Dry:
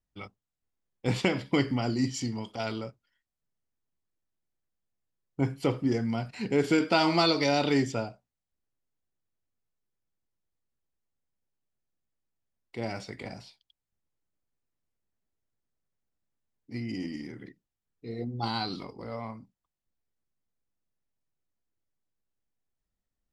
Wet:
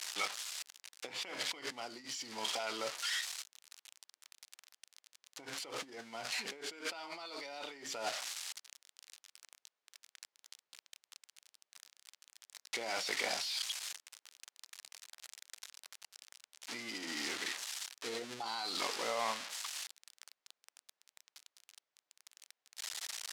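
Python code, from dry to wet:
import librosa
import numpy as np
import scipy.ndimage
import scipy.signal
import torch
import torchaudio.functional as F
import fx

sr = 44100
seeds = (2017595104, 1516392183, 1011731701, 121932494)

y = x + 0.5 * 10.0 ** (-26.5 / 20.0) * np.diff(np.sign(x), prepend=np.sign(x[:1]))
y = fx.over_compress(y, sr, threshold_db=-37.0, ratio=-1.0)
y = fx.bandpass_edges(y, sr, low_hz=650.0, high_hz=5000.0)
y = y * librosa.db_to_amplitude(3.0)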